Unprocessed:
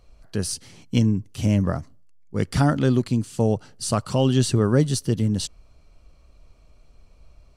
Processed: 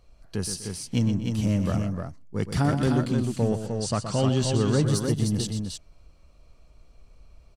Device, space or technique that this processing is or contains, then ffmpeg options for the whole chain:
parallel distortion: -filter_complex "[0:a]asettb=1/sr,asplit=3[a][b][c];[a]atrim=end=3.364[d];[b]atrim=start=3.36:end=4.85,asetpts=PTS-STARTPTS,afade=t=in:d=0.004:c=qsin,afade=t=out:st=1.486:d=0.004:c=qsin,lowpass=f=8.4k:w=0.5412,lowpass=f=8.4k:w=1.3066[e];[c]atrim=start=4.846[f];[d][e]acrossfade=d=0.004:c1=hsin:c2=qsin[g];[g][f]acrossfade=d=0.004:c1=qsin:c2=hsin,asplit=2[h][i];[i]asoftclip=type=hard:threshold=-21dB,volume=-6dB[j];[h][j]amix=inputs=2:normalize=0,aecho=1:1:122|128|248|305:0.355|0.112|0.133|0.562,volume=-6.5dB"

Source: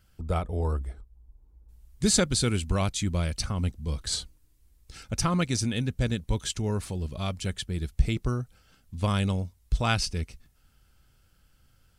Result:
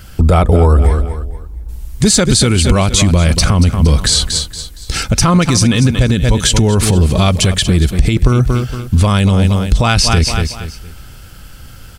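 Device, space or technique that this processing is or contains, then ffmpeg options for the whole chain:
loud club master: -af "aecho=1:1:232|464|696:0.2|0.0658|0.0217,acompressor=threshold=-28dB:ratio=2.5,asoftclip=type=hard:threshold=-19.5dB,alimiter=level_in=28.5dB:limit=-1dB:release=50:level=0:latency=1,volume=-1dB"

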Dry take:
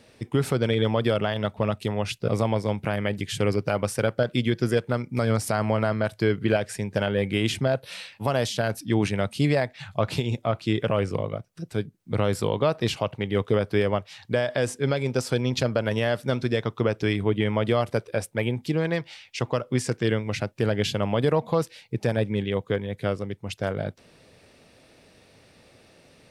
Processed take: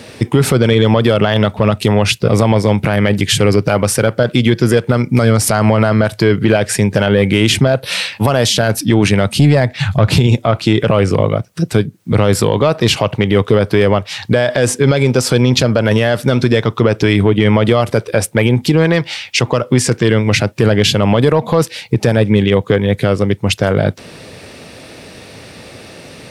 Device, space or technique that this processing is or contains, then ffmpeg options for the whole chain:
mastering chain: -filter_complex "[0:a]asettb=1/sr,asplit=3[a][b][c];[a]atrim=end=9.324[d];[b]atrim=start=9.32:end=10.27,asetpts=PTS-STARTPTS,afade=t=in:d=0.004:c=qsin,afade=t=out:st=0.946:d=0.004:c=qsin,lowshelf=f=190:g=10[e];[c]atrim=start=10.266[f];[d][e]acrossfade=d=0.004:c1=hsin:c2=qsin[g];[g][f]acrossfade=d=0.004:c1=qsin:c2=hsin,highpass=59,equalizer=f=640:t=o:w=0.77:g=-1.5,acompressor=threshold=-31dB:ratio=1.5,asoftclip=type=tanh:threshold=-15.5dB,alimiter=level_in=21.5dB:limit=-1dB:release=50:level=0:latency=1,volume=-1dB"

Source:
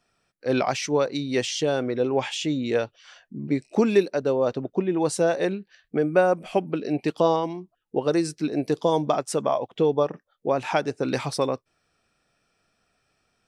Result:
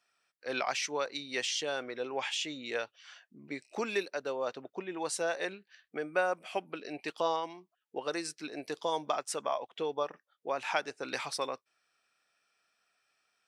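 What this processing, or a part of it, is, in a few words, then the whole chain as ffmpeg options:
filter by subtraction: -filter_complex "[0:a]asplit=2[a][b];[b]lowpass=1.7k,volume=-1[c];[a][c]amix=inputs=2:normalize=0,volume=-5dB"

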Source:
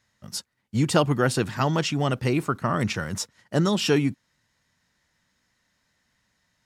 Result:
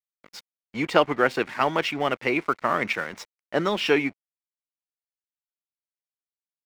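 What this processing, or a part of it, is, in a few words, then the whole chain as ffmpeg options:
pocket radio on a weak battery: -af "highpass=370,lowpass=3.1k,aeval=exprs='sgn(val(0))*max(abs(val(0))-0.00447,0)':c=same,equalizer=f=2.2k:t=o:w=0.31:g=9,volume=3.5dB"

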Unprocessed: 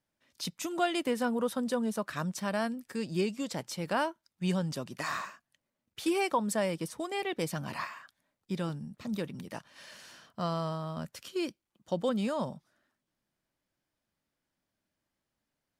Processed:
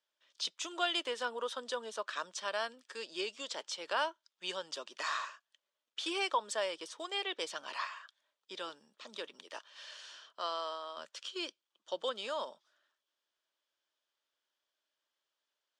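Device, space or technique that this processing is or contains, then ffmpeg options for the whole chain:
phone speaker on a table: -filter_complex "[0:a]asettb=1/sr,asplit=3[a][b][c];[a]atrim=end=9.444[d];[b]atrim=start=9.44:end=10.98,asetpts=PTS-STARTPTS,afade=t=in:d=0.004:c=qsin,afade=t=out:st=1.536:d=0.004:c=qsin,highpass=f=210:w=0.5412,highpass=f=210:w=1.3066[e];[c]atrim=start=10.976[f];[d][e]acrossfade=d=0.004:c1=hsin:c2=qsin[g];[g][f]acrossfade=d=0.004:c1=qsin:c2=hsin,highpass=f=470:w=0.5412,highpass=f=470:w=1.3066,equalizer=f=510:t=q:w=4:g=-4,equalizer=f=750:t=q:w=4:g=-8,equalizer=f=2.1k:t=q:w=4:g=-5,equalizer=f=3.3k:t=q:w=4:g=8,lowpass=f=7.4k:w=0.5412,lowpass=f=7.4k:w=1.3066"

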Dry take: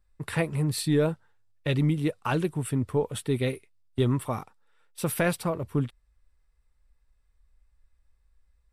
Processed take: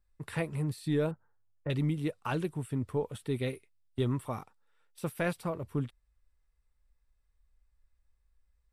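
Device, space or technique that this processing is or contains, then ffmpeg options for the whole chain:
de-esser from a sidechain: -filter_complex "[0:a]asplit=2[a][b];[b]highpass=f=5.5k:w=0.5412,highpass=f=5.5k:w=1.3066,apad=whole_len=384904[c];[a][c]sidechaincompress=threshold=-42dB:ratio=16:attack=2.7:release=39,asettb=1/sr,asplit=3[d][e][f];[d]atrim=end=1.114[g];[e]atrim=start=1.11:end=1.7,asetpts=PTS-STARTPTS,afade=t=in:d=0.004:c=qsin,afade=t=out:st=0.586:d=0.004:c=qsin,lowpass=f=1.5k:w=0.5412,lowpass=f=1.5k:w=1.3066[h];[f]atrim=start=1.696[i];[g][h]acrossfade=d=0.004:c1=hsin:c2=qsin[j];[j][i]acrossfade=d=0.004:c1=qsin:c2=hsin,volume=-6dB"

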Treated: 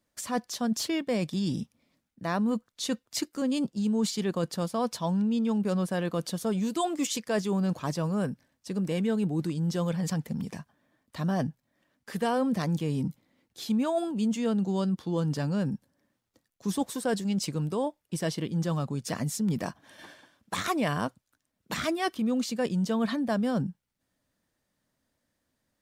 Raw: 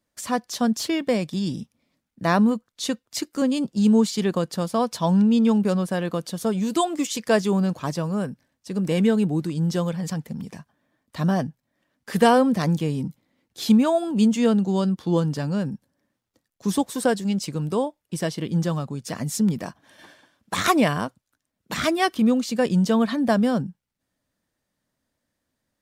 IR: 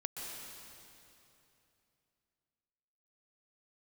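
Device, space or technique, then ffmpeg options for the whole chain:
compression on the reversed sound: -af "areverse,acompressor=threshold=-26dB:ratio=4,areverse"

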